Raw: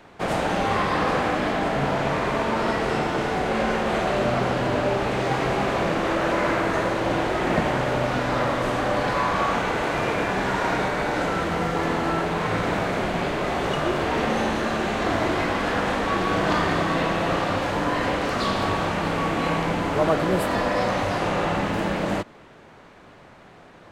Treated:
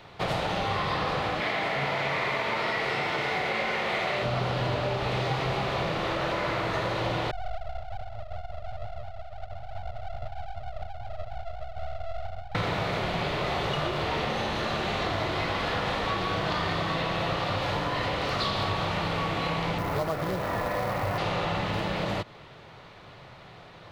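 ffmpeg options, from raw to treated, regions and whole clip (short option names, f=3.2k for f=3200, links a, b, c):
-filter_complex "[0:a]asettb=1/sr,asplit=3[a][b][c];[a]atrim=end=1.404[d];[b]atrim=start=1.4:end=4.23,asetpts=PTS-STARTPTS,afade=t=in:d=0.004:c=qsin,afade=t=out:st=2.826:d=0.004:c=qsin,highpass=f=270:p=1,aeval=exprs='sgn(val(0))*max(abs(val(0))-0.00158,0)':c=same,equalizer=f=2.1k:w=3.7:g=9[e];[c]atrim=start=4.226[f];[d][e]acrossfade=d=0.004:c1=hsin:c2=qsin[g];[g][f]acrossfade=d=0.004:c1=qsin:c2=hsin,asettb=1/sr,asplit=3[h][i][j];[h]atrim=end=7.314[k];[i]atrim=start=7.31:end=12.55,asetpts=PTS-STARTPTS,afade=t=in:d=0.004:c=qsin,afade=t=out:st=5.236:d=0.004:c=qsin,asuperpass=centerf=350:order=20:qfactor=2.9,aeval=exprs='abs(val(0))':c=same[l];[j]atrim=start=12.546[m];[k][l]acrossfade=d=0.004:c1=hsin:c2=qsin[n];[n][m]acrossfade=d=0.004:c1=qsin:c2=hsin,asettb=1/sr,asplit=3[o][p][q];[o]atrim=end=19.784[r];[p]atrim=start=19.78:end=21.18,asetpts=PTS-STARTPTS,afade=t=in:d=0.004:c=qsin,afade=t=out:st=1.396:d=0.004:c=qsin,lowpass=f=2.3k:w=0.5412,lowpass=f=2.3k:w=1.3066,acrusher=bits=4:mode=log:mix=0:aa=0.000001[s];[q]atrim=start=21.176[t];[r][s]acrossfade=d=0.004:c1=hsin:c2=qsin[u];[u][t]acrossfade=d=0.004:c1=qsin:c2=hsin,bandreject=f=1.6k:w=13,acompressor=threshold=-25dB:ratio=6,equalizer=f=125:t=o:w=1:g=7,equalizer=f=250:t=o:w=1:g=-8,equalizer=f=4k:t=o:w=1:g=8,equalizer=f=8k:t=o:w=1:g=-7"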